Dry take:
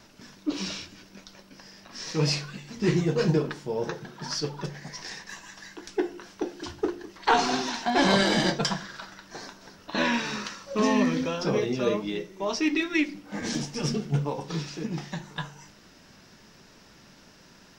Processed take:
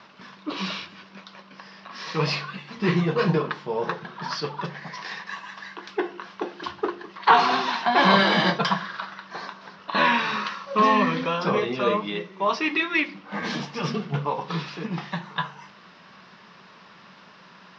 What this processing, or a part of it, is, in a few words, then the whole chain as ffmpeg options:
overdrive pedal into a guitar cabinet: -filter_complex "[0:a]asplit=2[link_01][link_02];[link_02]highpass=frequency=720:poles=1,volume=11dB,asoftclip=type=tanh:threshold=-8dB[link_03];[link_01][link_03]amix=inputs=2:normalize=0,lowpass=frequency=6400:poles=1,volume=-6dB,highpass=97,equalizer=frequency=180:width_type=q:width=4:gain=9,equalizer=frequency=290:width_type=q:width=4:gain=-5,equalizer=frequency=1100:width_type=q:width=4:gain=9,lowpass=frequency=4200:width=0.5412,lowpass=frequency=4200:width=1.3066"

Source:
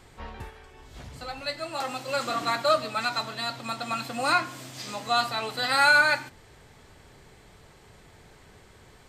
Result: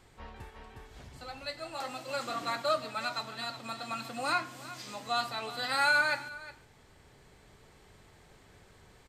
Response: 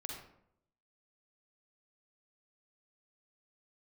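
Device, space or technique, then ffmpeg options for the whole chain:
ducked delay: -filter_complex "[0:a]asplit=3[link_01][link_02][link_03];[link_02]adelay=361,volume=-3dB[link_04];[link_03]apad=whole_len=416591[link_05];[link_04][link_05]sidechaincompress=threshold=-33dB:ratio=12:attack=16:release=1220[link_06];[link_01][link_06]amix=inputs=2:normalize=0,volume=-7dB"

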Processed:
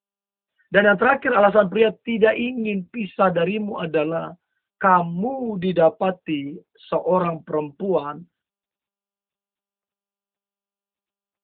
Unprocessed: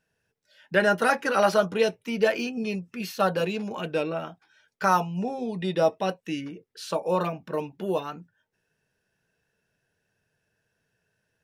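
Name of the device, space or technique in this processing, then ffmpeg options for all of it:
mobile call with aggressive noise cancelling: -filter_complex "[0:a]asplit=3[link_01][link_02][link_03];[link_01]afade=type=out:start_time=6.32:duration=0.02[link_04];[link_02]lowpass=7700,afade=type=in:start_time=6.32:duration=0.02,afade=type=out:start_time=7.41:duration=0.02[link_05];[link_03]afade=type=in:start_time=7.41:duration=0.02[link_06];[link_04][link_05][link_06]amix=inputs=3:normalize=0,highpass=frequency=130:width=0.5412,highpass=frequency=130:width=1.3066,afftdn=noise_reduction=36:noise_floor=-44,volume=6.5dB" -ar 8000 -c:a libopencore_amrnb -b:a 10200

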